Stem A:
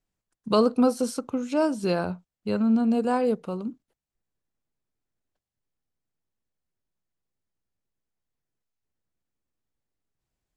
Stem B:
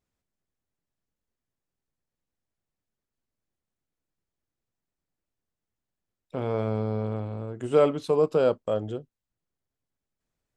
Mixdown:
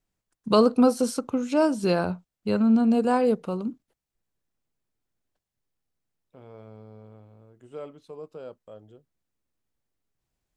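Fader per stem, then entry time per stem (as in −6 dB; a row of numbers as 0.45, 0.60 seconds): +2.0, −18.5 decibels; 0.00, 0.00 seconds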